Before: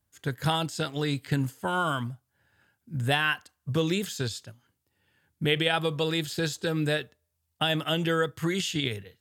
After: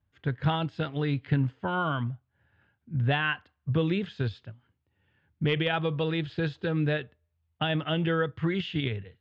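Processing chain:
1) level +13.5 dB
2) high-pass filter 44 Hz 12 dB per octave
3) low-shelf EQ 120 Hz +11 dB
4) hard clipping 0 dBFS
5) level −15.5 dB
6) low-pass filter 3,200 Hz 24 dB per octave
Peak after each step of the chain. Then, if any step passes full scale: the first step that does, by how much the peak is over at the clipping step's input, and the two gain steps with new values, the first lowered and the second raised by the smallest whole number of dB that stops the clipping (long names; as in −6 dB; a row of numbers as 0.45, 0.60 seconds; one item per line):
+5.0, +5.5, +5.5, 0.0, −15.5, −14.5 dBFS
step 1, 5.5 dB
step 1 +7.5 dB, step 5 −9.5 dB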